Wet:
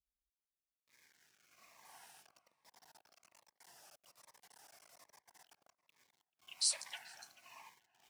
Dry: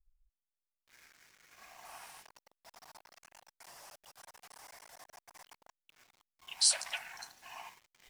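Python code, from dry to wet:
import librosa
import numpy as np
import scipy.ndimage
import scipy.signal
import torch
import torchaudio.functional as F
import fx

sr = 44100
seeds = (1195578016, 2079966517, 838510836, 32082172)

p1 = scipy.signal.sosfilt(scipy.signal.butter(2, 100.0, 'highpass', fs=sr, output='sos'), x)
p2 = p1 + fx.echo_filtered(p1, sr, ms=436, feedback_pct=25, hz=1900.0, wet_db=-16, dry=0)
p3 = fx.notch_cascade(p2, sr, direction='falling', hz=1.2)
y = p3 * librosa.db_to_amplitude(-6.5)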